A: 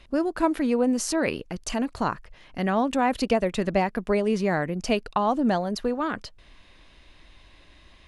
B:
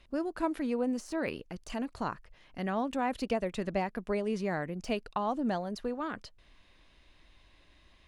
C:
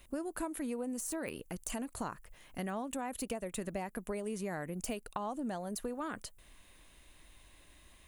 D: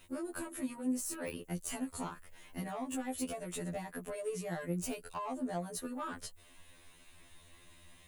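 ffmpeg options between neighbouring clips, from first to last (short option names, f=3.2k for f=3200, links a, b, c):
-af "deesser=0.7,volume=-8.5dB"
-af "aexciter=amount=8.8:drive=4:freq=7.1k,acompressor=threshold=-36dB:ratio=6,volume=1dB"
-filter_complex "[0:a]acrossover=split=240|7600[a][b][c];[b]asoftclip=type=tanh:threshold=-33.5dB[d];[a][d][c]amix=inputs=3:normalize=0,afftfilt=real='re*2*eq(mod(b,4),0)':imag='im*2*eq(mod(b,4),0)':win_size=2048:overlap=0.75,volume=3.5dB"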